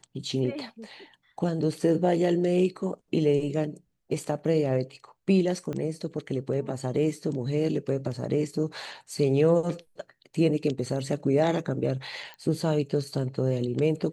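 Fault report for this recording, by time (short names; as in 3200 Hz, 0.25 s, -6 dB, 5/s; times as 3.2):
5.73 pop -22 dBFS
12.34 pop -28 dBFS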